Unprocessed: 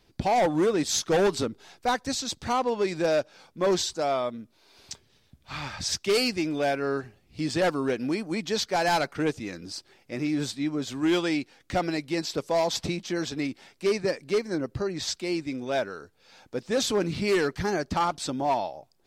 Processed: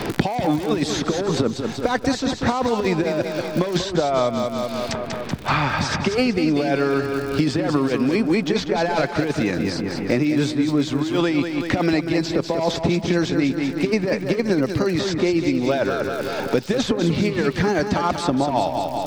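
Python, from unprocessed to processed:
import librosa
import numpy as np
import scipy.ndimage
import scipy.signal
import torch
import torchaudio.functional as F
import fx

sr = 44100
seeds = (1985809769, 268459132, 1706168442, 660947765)

y = fx.lowpass(x, sr, hz=1900.0, slope=6)
y = fx.over_compress(y, sr, threshold_db=-28.0, ratio=-0.5)
y = fx.dmg_crackle(y, sr, seeds[0], per_s=90.0, level_db=-47.0)
y = fx.echo_feedback(y, sr, ms=190, feedback_pct=46, wet_db=-8.0)
y = fx.band_squash(y, sr, depth_pct=100)
y = y * librosa.db_to_amplitude(8.5)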